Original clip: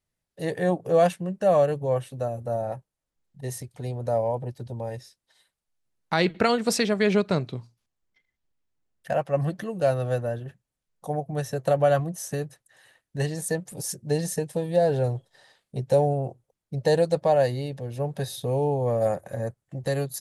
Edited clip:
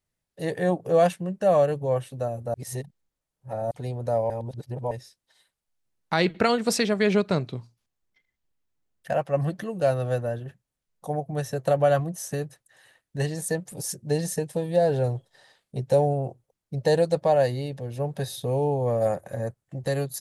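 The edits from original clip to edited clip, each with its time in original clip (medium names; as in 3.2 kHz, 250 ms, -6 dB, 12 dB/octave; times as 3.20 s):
2.54–3.71 s: reverse
4.30–4.91 s: reverse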